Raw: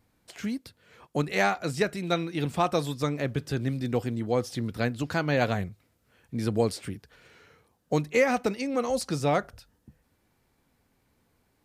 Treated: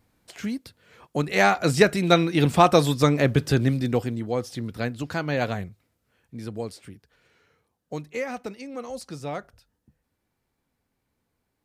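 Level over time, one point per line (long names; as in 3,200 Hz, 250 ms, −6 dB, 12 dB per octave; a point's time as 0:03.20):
0:01.20 +2 dB
0:01.68 +9 dB
0:03.52 +9 dB
0:04.32 −0.5 dB
0:05.45 −0.5 dB
0:06.60 −7.5 dB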